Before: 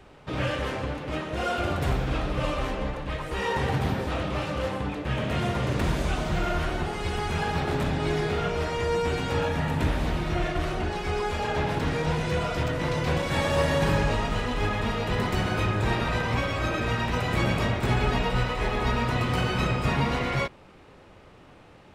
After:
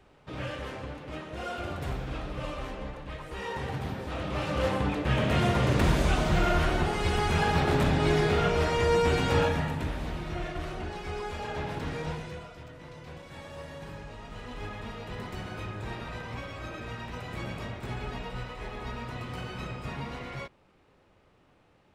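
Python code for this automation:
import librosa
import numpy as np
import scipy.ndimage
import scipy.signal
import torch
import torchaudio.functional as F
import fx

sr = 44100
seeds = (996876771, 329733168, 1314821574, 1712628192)

y = fx.gain(x, sr, db=fx.line((4.0, -8.0), (4.67, 2.0), (9.42, 2.0), (9.84, -7.5), (12.08, -7.5), (12.55, -19.0), (14.12, -19.0), (14.53, -12.0)))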